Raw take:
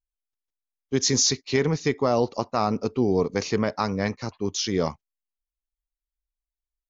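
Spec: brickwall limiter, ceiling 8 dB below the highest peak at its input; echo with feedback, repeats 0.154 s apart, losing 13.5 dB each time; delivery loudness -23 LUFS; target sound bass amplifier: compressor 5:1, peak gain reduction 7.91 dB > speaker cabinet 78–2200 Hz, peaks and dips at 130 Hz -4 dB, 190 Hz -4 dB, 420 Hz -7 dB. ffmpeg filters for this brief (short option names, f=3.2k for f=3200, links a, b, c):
-af "alimiter=limit=-15.5dB:level=0:latency=1,aecho=1:1:154|308:0.211|0.0444,acompressor=threshold=-28dB:ratio=5,highpass=f=78:w=0.5412,highpass=f=78:w=1.3066,equalizer=f=130:t=q:w=4:g=-4,equalizer=f=190:t=q:w=4:g=-4,equalizer=f=420:t=q:w=4:g=-7,lowpass=f=2.2k:w=0.5412,lowpass=f=2.2k:w=1.3066,volume=14dB"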